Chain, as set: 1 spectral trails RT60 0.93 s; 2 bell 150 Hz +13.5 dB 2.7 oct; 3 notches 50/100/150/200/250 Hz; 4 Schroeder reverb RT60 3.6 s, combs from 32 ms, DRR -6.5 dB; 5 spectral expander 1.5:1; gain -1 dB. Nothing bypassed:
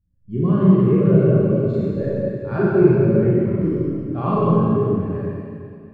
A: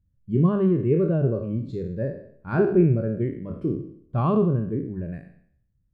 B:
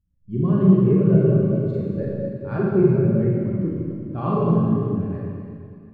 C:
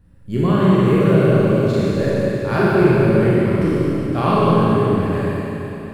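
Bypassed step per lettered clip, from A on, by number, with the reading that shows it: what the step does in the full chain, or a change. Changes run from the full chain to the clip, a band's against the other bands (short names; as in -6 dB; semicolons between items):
4, 2 kHz band +1.5 dB; 1, 2 kHz band -3.5 dB; 5, 2 kHz band +9.0 dB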